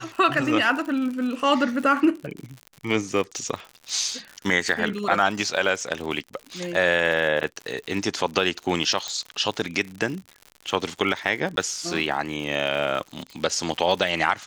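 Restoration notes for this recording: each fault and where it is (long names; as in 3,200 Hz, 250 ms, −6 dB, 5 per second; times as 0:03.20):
surface crackle 85 per second −31 dBFS
0:09.08: click −15 dBFS
0:11.56–0:11.57: drop-out 12 ms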